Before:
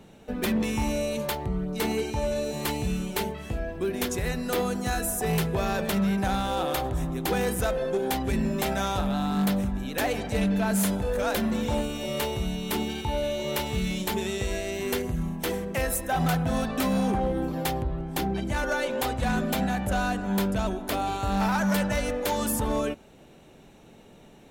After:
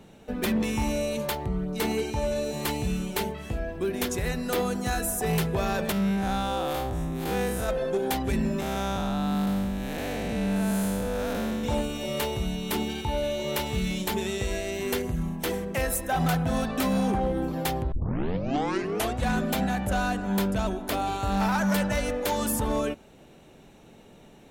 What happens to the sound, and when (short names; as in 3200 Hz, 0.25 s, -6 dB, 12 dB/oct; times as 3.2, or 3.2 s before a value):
5.92–7.69 time blur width 0.113 s
8.6–11.64 time blur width 0.308 s
17.92 tape start 1.29 s